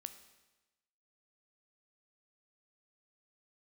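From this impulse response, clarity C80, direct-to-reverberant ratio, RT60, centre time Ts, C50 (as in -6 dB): 13.5 dB, 9.5 dB, 1.1 s, 10 ms, 11.5 dB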